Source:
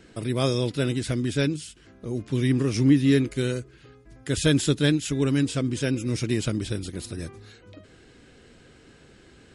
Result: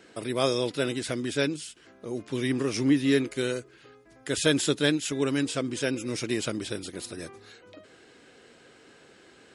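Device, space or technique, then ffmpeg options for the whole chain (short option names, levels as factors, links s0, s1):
filter by subtraction: -filter_complex "[0:a]asplit=2[s0][s1];[s1]lowpass=630,volume=-1[s2];[s0][s2]amix=inputs=2:normalize=0"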